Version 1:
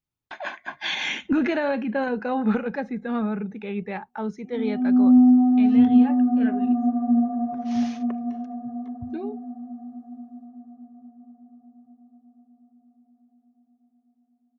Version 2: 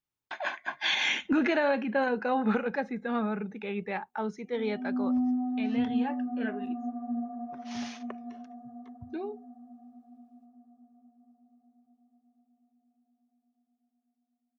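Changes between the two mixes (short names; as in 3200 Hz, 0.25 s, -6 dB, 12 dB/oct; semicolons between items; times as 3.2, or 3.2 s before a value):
background -8.5 dB; master: add low shelf 250 Hz -10 dB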